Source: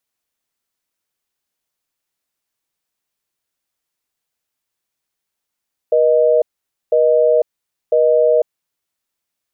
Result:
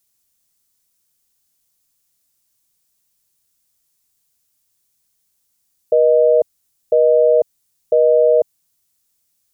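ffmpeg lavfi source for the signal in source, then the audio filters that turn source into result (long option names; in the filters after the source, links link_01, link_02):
-f lavfi -i "aevalsrc='0.237*(sin(2*PI*480*t)+sin(2*PI*620*t))*clip(min(mod(t,1),0.5-mod(t,1))/0.005,0,1)':duration=2.94:sample_rate=44100"
-af "bass=frequency=250:gain=11,treble=frequency=4000:gain=14"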